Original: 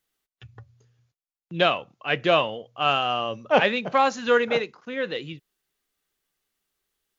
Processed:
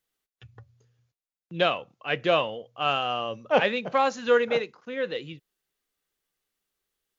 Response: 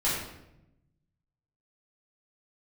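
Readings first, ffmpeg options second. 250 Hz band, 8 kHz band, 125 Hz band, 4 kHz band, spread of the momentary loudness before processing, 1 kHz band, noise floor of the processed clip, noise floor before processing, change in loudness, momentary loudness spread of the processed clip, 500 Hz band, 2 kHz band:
−3.5 dB, can't be measured, −3.5 dB, −3.5 dB, 10 LU, −3.5 dB, below −85 dBFS, below −85 dBFS, −2.5 dB, 11 LU, −1.5 dB, −3.5 dB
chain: -af "equalizer=frequency=500:width=5.9:gain=4,volume=-3.5dB"

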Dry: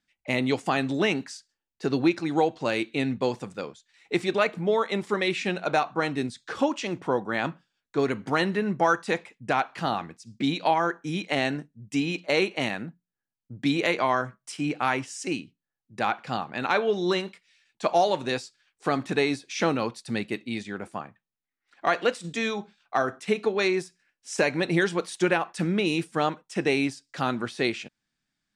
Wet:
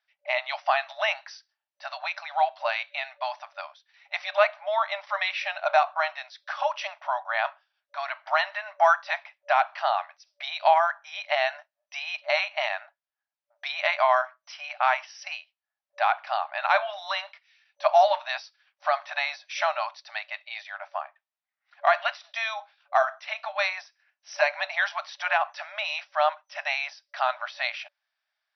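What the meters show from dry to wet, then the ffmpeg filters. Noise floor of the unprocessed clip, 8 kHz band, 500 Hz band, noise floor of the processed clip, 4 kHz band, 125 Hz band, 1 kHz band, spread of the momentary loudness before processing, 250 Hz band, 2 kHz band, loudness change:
below −85 dBFS, can't be measured, −2.0 dB, below −85 dBFS, 0.0 dB, below −40 dB, +3.5 dB, 9 LU, below −40 dB, +2.0 dB, 0.0 dB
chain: -af "aemphasis=mode=reproduction:type=bsi,afftfilt=real='re*between(b*sr/4096,580,6000)':imag='im*between(b*sr/4096,580,6000)':win_size=4096:overlap=0.75,volume=3.5dB"

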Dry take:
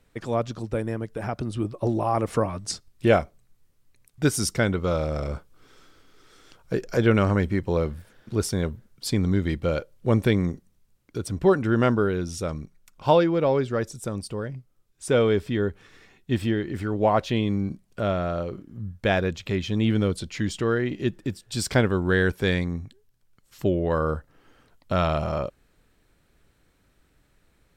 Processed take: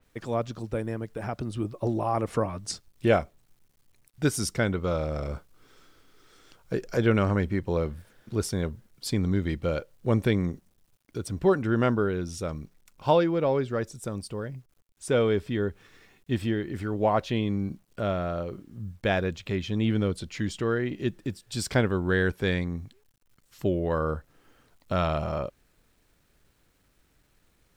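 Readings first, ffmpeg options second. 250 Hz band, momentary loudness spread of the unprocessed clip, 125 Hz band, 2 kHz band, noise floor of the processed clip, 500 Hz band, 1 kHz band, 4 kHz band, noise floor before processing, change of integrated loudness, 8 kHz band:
−3.0 dB, 12 LU, −3.0 dB, −3.0 dB, −67 dBFS, −3.0 dB, −3.0 dB, −3.5 dB, −65 dBFS, −3.0 dB, −4.0 dB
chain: -af "acrusher=bits=10:mix=0:aa=0.000001,adynamicequalizer=threshold=0.00891:dfrequency=4000:dqfactor=0.7:tfrequency=4000:tqfactor=0.7:attack=5:release=100:ratio=0.375:range=2:mode=cutabove:tftype=highshelf,volume=-3dB"

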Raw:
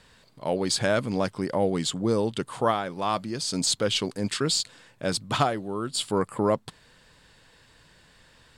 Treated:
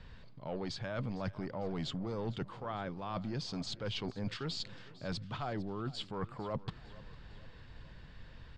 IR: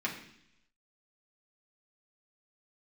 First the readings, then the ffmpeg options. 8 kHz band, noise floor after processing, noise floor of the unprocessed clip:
−24.5 dB, −53 dBFS, −58 dBFS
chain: -filter_complex "[0:a]acrossover=split=550|2100[link_01][link_02][link_03];[link_01]asoftclip=type=tanh:threshold=-30dB[link_04];[link_04][link_02][link_03]amix=inputs=3:normalize=0,bass=frequency=250:gain=5,treble=frequency=4000:gain=-7,areverse,acompressor=threshold=-35dB:ratio=6,areverse,lowpass=frequency=5800:width=0.5412,lowpass=frequency=5800:width=1.3066,lowshelf=frequency=100:gain=12,aecho=1:1:453|906|1359|1812|2265:0.106|0.0604|0.0344|0.0196|0.0112,volume=-2.5dB"

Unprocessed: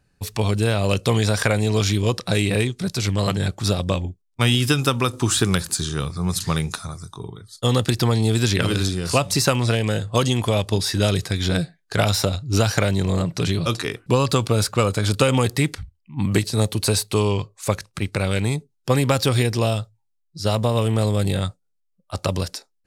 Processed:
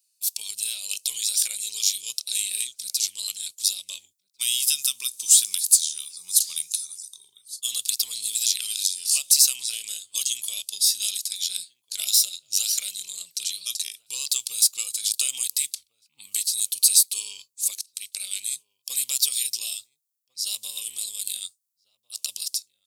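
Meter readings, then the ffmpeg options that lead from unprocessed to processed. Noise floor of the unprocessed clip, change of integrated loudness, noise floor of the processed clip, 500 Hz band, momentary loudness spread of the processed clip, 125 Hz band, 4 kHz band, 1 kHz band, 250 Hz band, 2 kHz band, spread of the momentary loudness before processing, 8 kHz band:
−70 dBFS, −1.5 dB, −75 dBFS, below −35 dB, 15 LU, below −40 dB, +0.5 dB, below −30 dB, below −40 dB, −14.0 dB, 8 LU, +9.0 dB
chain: -filter_complex "[0:a]aderivative,asplit=2[link_01][link_02];[link_02]adelay=1399,volume=-22dB,highshelf=frequency=4000:gain=-31.5[link_03];[link_01][link_03]amix=inputs=2:normalize=0,aexciter=amount=14.4:drive=3.2:freq=2500,volume=-16.5dB"

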